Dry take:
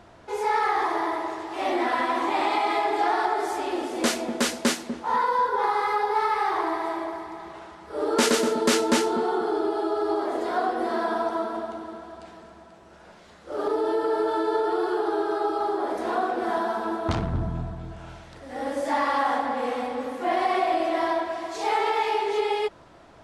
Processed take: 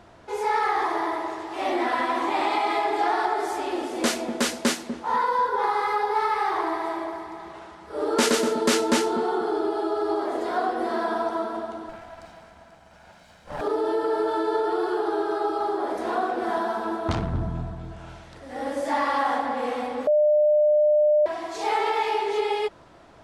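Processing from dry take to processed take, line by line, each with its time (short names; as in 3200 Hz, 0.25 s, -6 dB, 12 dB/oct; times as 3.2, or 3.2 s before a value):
11.89–13.61 minimum comb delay 1.3 ms
20.07–21.26 bleep 601 Hz -15.5 dBFS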